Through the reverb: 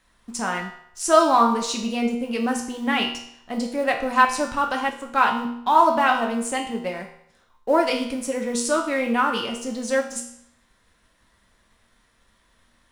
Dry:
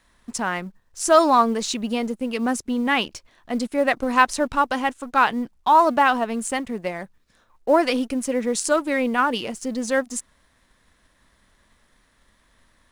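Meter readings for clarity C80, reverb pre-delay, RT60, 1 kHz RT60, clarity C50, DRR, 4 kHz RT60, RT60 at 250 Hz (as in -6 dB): 10.0 dB, 4 ms, 0.70 s, 0.70 s, 6.5 dB, 1.0 dB, 0.65 s, 0.70 s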